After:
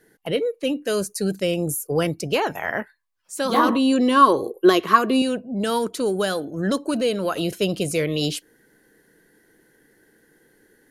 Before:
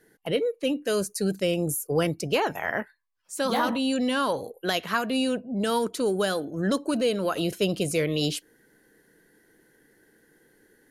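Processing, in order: 3.54–5.22 s: small resonant body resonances 360/1100 Hz, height 17 dB, ringing for 45 ms; trim +2.5 dB

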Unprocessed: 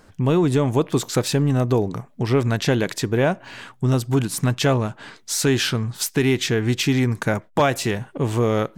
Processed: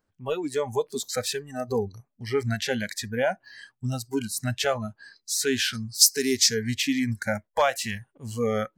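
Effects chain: spectral noise reduction 23 dB; 5.73–6.64 s: resonant high shelf 3.9 kHz +8.5 dB, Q 3; trim -3 dB

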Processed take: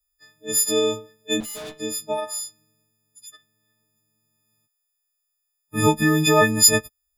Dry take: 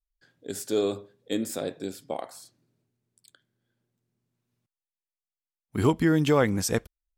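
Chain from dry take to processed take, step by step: partials quantised in pitch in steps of 6 st; 1.40–1.80 s: valve stage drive 36 dB, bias 0.8; trim +3 dB

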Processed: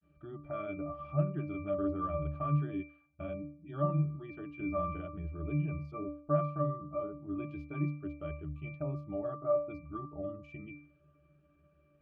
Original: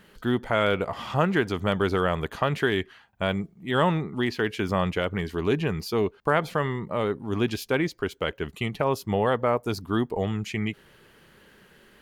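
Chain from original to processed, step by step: spectral gate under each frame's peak -30 dB strong; granulator 100 ms, spray 21 ms, pitch spread up and down by 0 st; pitch-class resonator D, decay 0.47 s; trim +7.5 dB

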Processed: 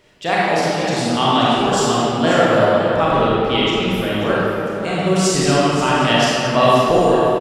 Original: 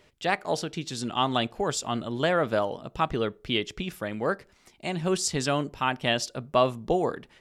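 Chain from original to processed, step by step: 6.62–7.09 s: treble shelf 4.9 kHz +12 dB; delay 534 ms -11.5 dB; reverberation RT60 2.8 s, pre-delay 29 ms, DRR -7.5 dB; trim +3.5 dB

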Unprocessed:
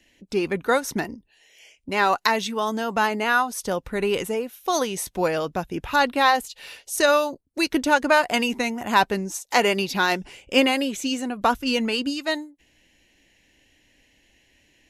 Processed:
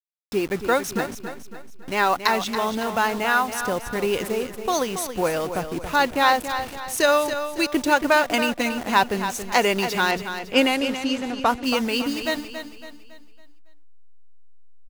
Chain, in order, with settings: send-on-delta sampling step -32 dBFS; 10.11–11.64 s: level-controlled noise filter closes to 2.2 kHz, open at -15.5 dBFS; feedback delay 278 ms, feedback 42%, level -9.5 dB

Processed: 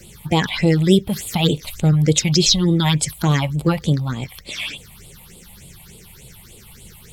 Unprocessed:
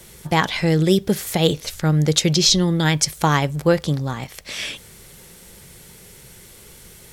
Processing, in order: coarse spectral quantiser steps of 15 dB; phase shifter stages 6, 3.4 Hz, lowest notch 390–1700 Hz; trim +3.5 dB

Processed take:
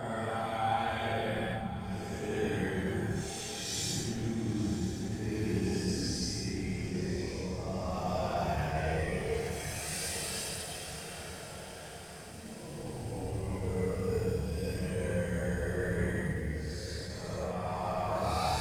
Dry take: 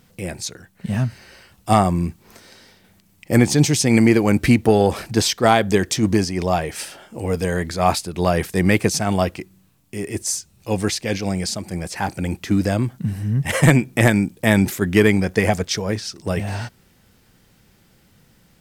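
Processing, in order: time reversed locally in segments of 37 ms; reverse; compression 10:1, threshold -23 dBFS, peak gain reduction 15 dB; reverse; Paulstretch 7.4×, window 0.10 s, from 5.43 s; chorus voices 6, 0.22 Hz, delay 27 ms, depth 1.3 ms; on a send: echo that smears into a reverb 1028 ms, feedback 69%, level -12 dB; on the sum: attacks held to a fixed rise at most 110 dB/s; trim -4 dB

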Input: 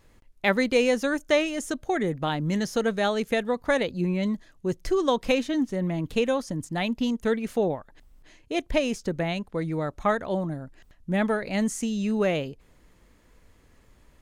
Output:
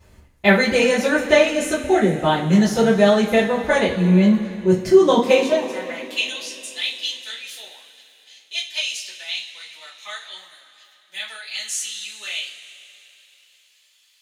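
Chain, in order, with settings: high-pass sweep 63 Hz -> 3.5 kHz, 4.63–6.24 s; two-slope reverb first 0.28 s, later 3.2 s, from -20 dB, DRR -9.5 dB; trim -2 dB

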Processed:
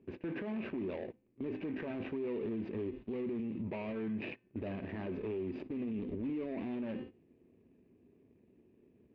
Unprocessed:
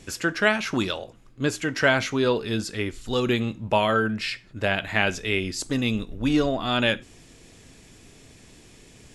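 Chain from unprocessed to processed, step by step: median filter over 41 samples; cabinet simulation 100–2900 Hz, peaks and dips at 130 Hz -7 dB, 240 Hz +6 dB, 380 Hz +8 dB, 760 Hz -4 dB, 1.4 kHz -10 dB, 2.4 kHz +6 dB; de-hum 257.1 Hz, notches 27; gate -41 dBFS, range -15 dB; peak limiter -33 dBFS, peak gain reduction 24 dB; trim +1.5 dB

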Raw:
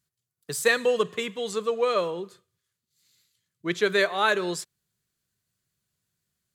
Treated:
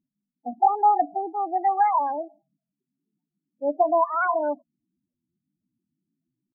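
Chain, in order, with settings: pitch shift +9 st; Chebyshev low-pass 1.4 kHz, order 3; loudest bins only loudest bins 8; trim +5.5 dB

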